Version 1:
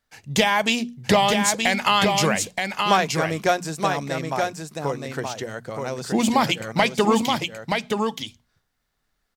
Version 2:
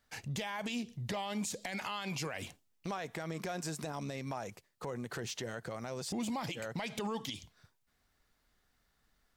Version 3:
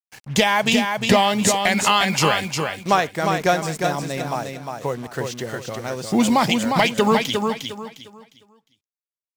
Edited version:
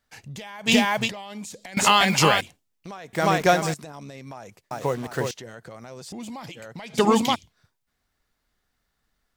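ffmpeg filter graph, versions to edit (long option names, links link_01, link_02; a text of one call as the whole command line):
ffmpeg -i take0.wav -i take1.wav -i take2.wav -filter_complex "[2:a]asplit=4[link_01][link_02][link_03][link_04];[1:a]asplit=6[link_05][link_06][link_07][link_08][link_09][link_10];[link_05]atrim=end=0.7[link_11];[link_01]atrim=start=0.66:end=1.1[link_12];[link_06]atrim=start=1.06:end=1.772[link_13];[link_02]atrim=start=1.768:end=2.412[link_14];[link_07]atrim=start=2.408:end=3.132[link_15];[link_03]atrim=start=3.128:end=3.742[link_16];[link_08]atrim=start=3.738:end=4.712[link_17];[link_04]atrim=start=4.708:end=5.312[link_18];[link_09]atrim=start=5.308:end=6.95[link_19];[0:a]atrim=start=6.93:end=7.36[link_20];[link_10]atrim=start=7.34[link_21];[link_11][link_12]acrossfade=duration=0.04:curve1=tri:curve2=tri[link_22];[link_22][link_13]acrossfade=duration=0.04:curve1=tri:curve2=tri[link_23];[link_23][link_14]acrossfade=duration=0.004:curve1=hsin:curve2=hsin[link_24];[link_24][link_15]acrossfade=duration=0.004:curve1=hsin:curve2=hsin[link_25];[link_25][link_16]acrossfade=duration=0.004:curve1=hsin:curve2=hsin[link_26];[link_26][link_17]acrossfade=duration=0.004:curve1=hsin:curve2=hsin[link_27];[link_27][link_18]acrossfade=duration=0.004:curve1=hsin:curve2=hsin[link_28];[link_28][link_19]acrossfade=duration=0.004:curve1=hsin:curve2=hsin[link_29];[link_29][link_20]acrossfade=duration=0.02:curve1=tri:curve2=tri[link_30];[link_30][link_21]acrossfade=duration=0.02:curve1=tri:curve2=tri" out.wav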